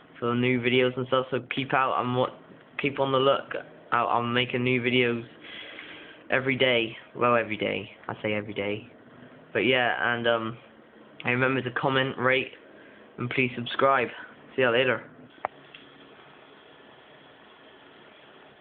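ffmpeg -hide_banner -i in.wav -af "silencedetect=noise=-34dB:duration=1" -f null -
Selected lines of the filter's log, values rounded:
silence_start: 15.75
silence_end: 18.61 | silence_duration: 2.86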